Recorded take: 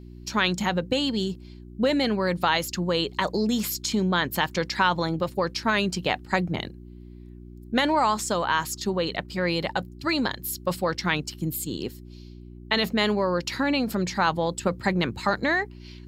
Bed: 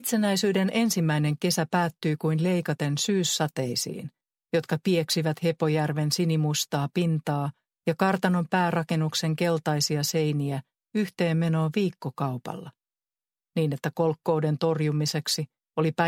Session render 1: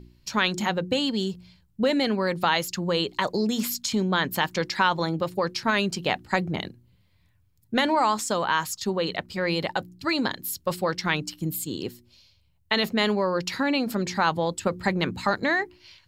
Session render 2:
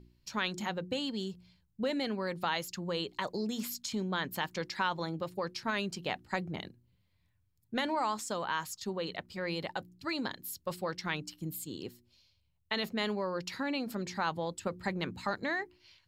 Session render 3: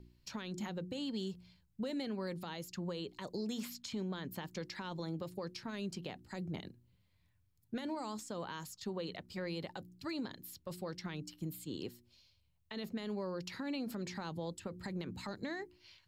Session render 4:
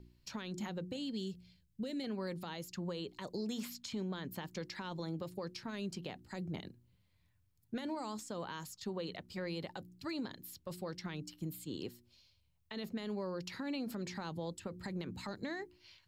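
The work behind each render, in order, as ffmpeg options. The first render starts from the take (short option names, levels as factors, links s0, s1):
-af "bandreject=f=60:t=h:w=4,bandreject=f=120:t=h:w=4,bandreject=f=180:t=h:w=4,bandreject=f=240:t=h:w=4,bandreject=f=300:t=h:w=4,bandreject=f=360:t=h:w=4"
-af "volume=0.316"
-filter_complex "[0:a]acrossover=split=470|4100[s0][s1][s2];[s0]acompressor=threshold=0.0158:ratio=4[s3];[s1]acompressor=threshold=0.00501:ratio=4[s4];[s2]acompressor=threshold=0.00282:ratio=4[s5];[s3][s4][s5]amix=inputs=3:normalize=0,alimiter=level_in=2.24:limit=0.0631:level=0:latency=1:release=83,volume=0.447"
-filter_complex "[0:a]asettb=1/sr,asplit=3[s0][s1][s2];[s0]atrim=end=0.964[s3];[s1]atrim=start=0.96:end=2.04,asetpts=PTS-STARTPTS,afade=t=in:d=0.004:c=qsin,afade=t=out:st=1.076:d=0.004:c=qsin,equalizer=f=1000:w=1.3:g=-12[s4];[s2]atrim=start=2.036[s5];[s3][s4]acrossfade=d=0.004:c1=hsin:c2=qsin[s6];[s6][s5]acrossfade=d=0.004:c1=qsin:c2=hsin"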